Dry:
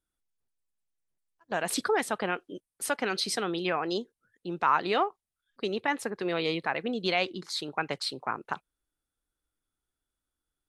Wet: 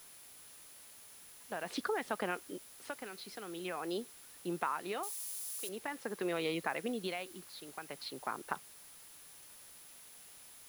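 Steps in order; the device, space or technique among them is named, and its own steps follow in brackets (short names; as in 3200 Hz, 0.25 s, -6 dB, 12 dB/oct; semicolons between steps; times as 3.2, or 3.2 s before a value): medium wave at night (BPF 150–3600 Hz; compressor, threshold -29 dBFS, peak gain reduction 10.5 dB; tremolo 0.46 Hz, depth 74%; whine 10000 Hz -56 dBFS; white noise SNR 15 dB); 5.03–5.69 tone controls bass -14 dB, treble +14 dB; gain -1.5 dB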